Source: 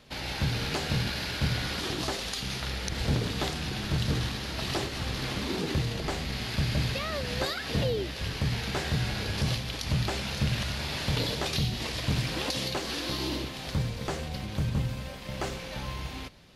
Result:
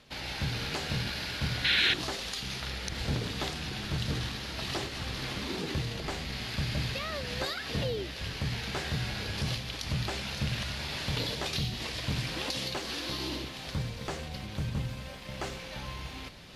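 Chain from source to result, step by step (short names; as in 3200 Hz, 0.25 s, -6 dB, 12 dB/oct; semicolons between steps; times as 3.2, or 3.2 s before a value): bell 2800 Hz +3 dB 3 oct; reverse; upward compressor, threshold -35 dBFS; reverse; painted sound noise, 1.64–1.94, 1400–4300 Hz -21 dBFS; gain -4.5 dB; AAC 96 kbps 32000 Hz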